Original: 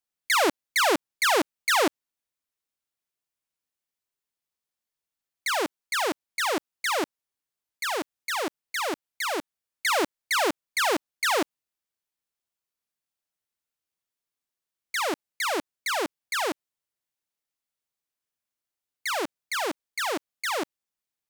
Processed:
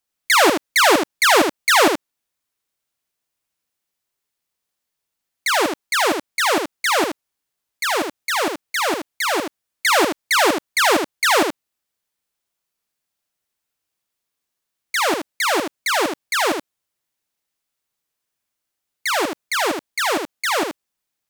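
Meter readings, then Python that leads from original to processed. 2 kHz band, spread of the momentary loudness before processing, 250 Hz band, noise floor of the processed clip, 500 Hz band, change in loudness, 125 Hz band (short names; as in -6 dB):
+8.5 dB, 9 LU, +8.5 dB, -81 dBFS, +8.5 dB, +8.5 dB, +8.5 dB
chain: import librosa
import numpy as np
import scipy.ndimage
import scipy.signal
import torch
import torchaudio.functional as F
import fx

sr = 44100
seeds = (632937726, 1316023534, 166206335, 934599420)

y = x + 10.0 ** (-6.0 / 20.0) * np.pad(x, (int(77 * sr / 1000.0), 0))[:len(x)]
y = F.gain(torch.from_numpy(y), 7.5).numpy()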